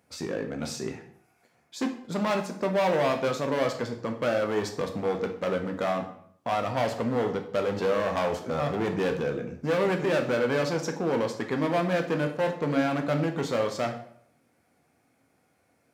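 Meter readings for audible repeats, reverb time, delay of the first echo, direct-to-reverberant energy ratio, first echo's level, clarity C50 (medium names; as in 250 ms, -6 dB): no echo, 0.65 s, no echo, 4.0 dB, no echo, 9.5 dB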